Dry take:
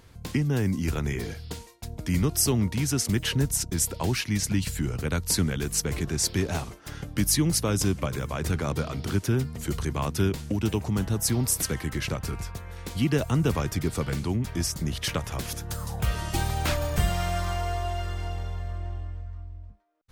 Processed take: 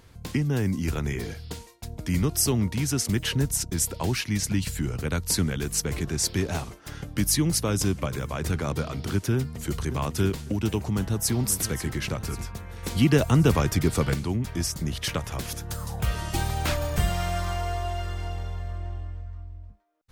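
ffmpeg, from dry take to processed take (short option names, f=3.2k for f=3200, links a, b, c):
-filter_complex "[0:a]asplit=2[a][b];[b]afade=t=in:st=9.36:d=0.01,afade=t=out:st=9.79:d=0.01,aecho=0:1:550|1100|1650|2200:0.398107|0.119432|0.0358296|0.0107489[c];[a][c]amix=inputs=2:normalize=0,asplit=2[d][e];[e]afade=t=in:st=10.75:d=0.01,afade=t=out:st=11.37:d=0.01,aecho=0:1:540|1080|1620|2160|2700:0.266073|0.133036|0.0665181|0.0332591|0.0166295[f];[d][f]amix=inputs=2:normalize=0,asplit=3[g][h][i];[g]atrim=end=12.832[j];[h]atrim=start=12.828:end=14.142,asetpts=PTS-STARTPTS,volume=4.5dB[k];[i]atrim=start=14.138[l];[j][k]acrossfade=d=0.004:c1=hsin:c2=hsin[m];[m][l]acrossfade=d=0.004:c1=hsin:c2=hsin"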